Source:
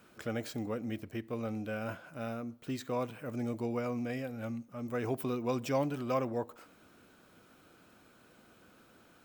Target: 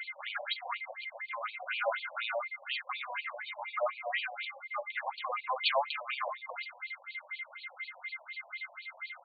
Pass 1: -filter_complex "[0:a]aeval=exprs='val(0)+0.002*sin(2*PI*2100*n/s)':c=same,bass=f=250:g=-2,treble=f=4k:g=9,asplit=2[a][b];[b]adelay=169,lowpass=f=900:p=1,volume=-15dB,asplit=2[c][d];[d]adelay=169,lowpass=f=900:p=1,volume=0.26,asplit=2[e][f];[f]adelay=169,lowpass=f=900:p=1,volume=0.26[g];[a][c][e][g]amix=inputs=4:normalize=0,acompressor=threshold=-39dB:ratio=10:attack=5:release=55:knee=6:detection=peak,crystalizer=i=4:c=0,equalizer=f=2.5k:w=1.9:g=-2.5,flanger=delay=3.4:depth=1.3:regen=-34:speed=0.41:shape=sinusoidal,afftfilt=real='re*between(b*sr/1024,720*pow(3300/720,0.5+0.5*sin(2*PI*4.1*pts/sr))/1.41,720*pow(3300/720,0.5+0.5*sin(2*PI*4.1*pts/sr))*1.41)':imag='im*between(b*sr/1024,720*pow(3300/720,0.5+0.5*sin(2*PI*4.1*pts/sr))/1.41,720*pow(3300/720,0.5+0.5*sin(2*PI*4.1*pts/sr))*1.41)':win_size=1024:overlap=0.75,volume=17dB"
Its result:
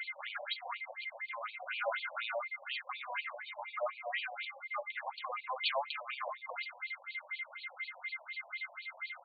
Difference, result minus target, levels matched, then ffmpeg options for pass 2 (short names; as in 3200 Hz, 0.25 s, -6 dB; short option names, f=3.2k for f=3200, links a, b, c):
compressor: peak gain reduction +5.5 dB
-filter_complex "[0:a]aeval=exprs='val(0)+0.002*sin(2*PI*2100*n/s)':c=same,bass=f=250:g=-2,treble=f=4k:g=9,asplit=2[a][b];[b]adelay=169,lowpass=f=900:p=1,volume=-15dB,asplit=2[c][d];[d]adelay=169,lowpass=f=900:p=1,volume=0.26,asplit=2[e][f];[f]adelay=169,lowpass=f=900:p=1,volume=0.26[g];[a][c][e][g]amix=inputs=4:normalize=0,acompressor=threshold=-33dB:ratio=10:attack=5:release=55:knee=6:detection=peak,crystalizer=i=4:c=0,equalizer=f=2.5k:w=1.9:g=-2.5,flanger=delay=3.4:depth=1.3:regen=-34:speed=0.41:shape=sinusoidal,afftfilt=real='re*between(b*sr/1024,720*pow(3300/720,0.5+0.5*sin(2*PI*4.1*pts/sr))/1.41,720*pow(3300/720,0.5+0.5*sin(2*PI*4.1*pts/sr))*1.41)':imag='im*between(b*sr/1024,720*pow(3300/720,0.5+0.5*sin(2*PI*4.1*pts/sr))/1.41,720*pow(3300/720,0.5+0.5*sin(2*PI*4.1*pts/sr))*1.41)':win_size=1024:overlap=0.75,volume=17dB"